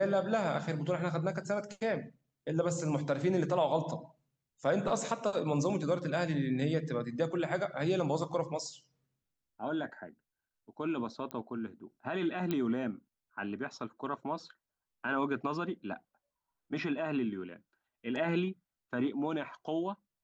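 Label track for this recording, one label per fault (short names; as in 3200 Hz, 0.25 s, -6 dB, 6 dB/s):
11.310000	11.310000	pop -25 dBFS
12.510000	12.510000	pop -20 dBFS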